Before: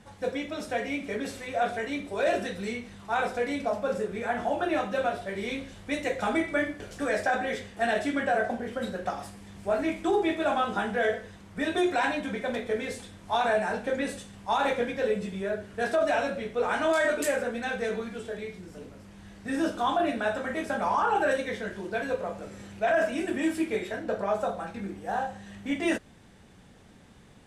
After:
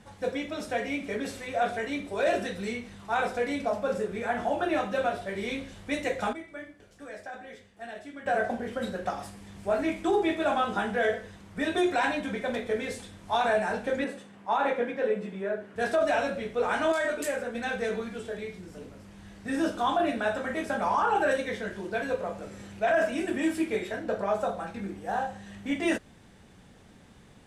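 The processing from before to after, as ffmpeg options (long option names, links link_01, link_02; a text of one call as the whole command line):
ffmpeg -i in.wav -filter_complex "[0:a]asettb=1/sr,asplit=3[link_01][link_02][link_03];[link_01]atrim=end=14.044[link_04];[link_02]atrim=start=14.04:end=15.76,asetpts=PTS-STARTPTS,afade=type=in:duration=0.004:curve=qsin,afade=type=out:start_time=1.716:duration=0.004:curve=qsin,acrossover=split=160 2600:gain=0.0631 1 0.251[link_05][link_06][link_07];[link_05][link_06][link_07]amix=inputs=3:normalize=0[link_08];[link_03]atrim=start=15.756[link_09];[link_04][link_08]acrossfade=duration=0.004:curve1=hsin:curve2=qsin[link_10];[link_10][link_09]acrossfade=duration=0.004:curve1=qsin:curve2=hsin,asplit=5[link_11][link_12][link_13][link_14][link_15];[link_11]atrim=end=6.33,asetpts=PTS-STARTPTS,afade=type=out:start_time=5.99:duration=0.34:curve=log:silence=0.188365[link_16];[link_12]atrim=start=6.33:end=8.26,asetpts=PTS-STARTPTS,volume=-14.5dB[link_17];[link_13]atrim=start=8.26:end=16.922,asetpts=PTS-STARTPTS,afade=type=in:duration=0.34:curve=log:silence=0.188365[link_18];[link_14]atrim=start=16.918:end=17.552,asetpts=PTS-STARTPTS,volume=-3.5dB[link_19];[link_15]atrim=start=17.548[link_20];[link_16][link_17][link_18]concat=n=3:v=0:a=1[link_21];[link_21][link_19]acrossfade=duration=0.004:curve1=hsin:curve2=hsin[link_22];[link_22][link_20]acrossfade=duration=0.004:curve1=hsin:curve2=hsin" out.wav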